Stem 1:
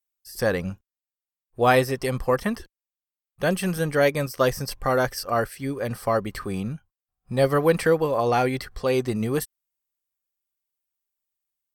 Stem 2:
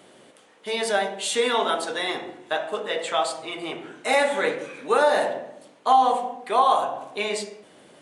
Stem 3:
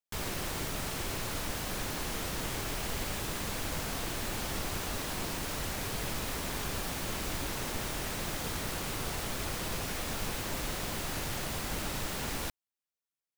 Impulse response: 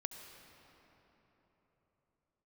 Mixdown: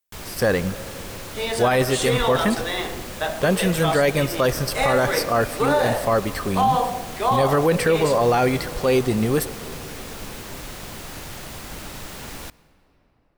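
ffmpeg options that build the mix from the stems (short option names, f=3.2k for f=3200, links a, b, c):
-filter_complex "[0:a]volume=2dB,asplit=2[a][b];[b]volume=-5.5dB[c];[1:a]adelay=700,volume=0dB[d];[2:a]volume=-1.5dB,asplit=2[e][f];[f]volume=-11dB[g];[3:a]atrim=start_sample=2205[h];[c][g]amix=inputs=2:normalize=0[i];[i][h]afir=irnorm=-1:irlink=0[j];[a][d][e][j]amix=inputs=4:normalize=0,alimiter=limit=-10dB:level=0:latency=1:release=12"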